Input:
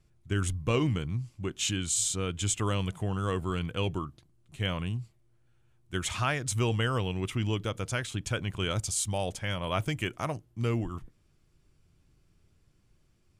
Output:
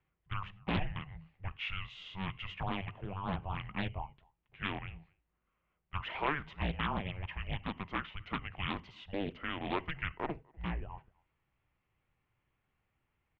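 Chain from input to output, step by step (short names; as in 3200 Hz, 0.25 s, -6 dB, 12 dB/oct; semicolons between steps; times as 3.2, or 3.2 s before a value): low shelf 190 Hz -7.5 dB; notches 50/100/150/200 Hz; speakerphone echo 0.25 s, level -28 dB; on a send at -19.5 dB: reverb, pre-delay 3 ms; on the sum: mistuned SSB -290 Hz 180–3200 Hz; Doppler distortion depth 0.71 ms; gain -2.5 dB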